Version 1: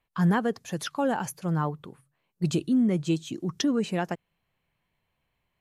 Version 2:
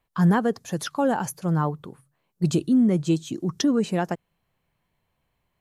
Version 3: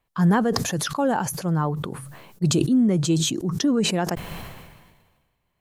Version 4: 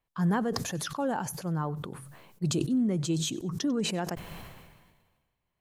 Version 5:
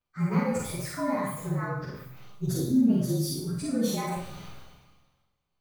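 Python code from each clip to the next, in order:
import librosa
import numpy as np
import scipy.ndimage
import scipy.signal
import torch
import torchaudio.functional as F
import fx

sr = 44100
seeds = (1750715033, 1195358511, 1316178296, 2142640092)

y1 = fx.peak_eq(x, sr, hz=2500.0, db=-5.0, octaves=1.2)
y1 = F.gain(torch.from_numpy(y1), 4.0).numpy()
y2 = fx.sustainer(y1, sr, db_per_s=40.0)
y3 = fx.echo_feedback(y2, sr, ms=95, feedback_pct=32, wet_db=-23.0)
y3 = F.gain(torch.from_numpy(y3), -8.0).numpy()
y4 = fx.partial_stretch(y3, sr, pct=114)
y4 = fx.rev_schroeder(y4, sr, rt60_s=0.63, comb_ms=31, drr_db=-3.0)
y4 = F.gain(torch.from_numpy(y4), -1.0).numpy()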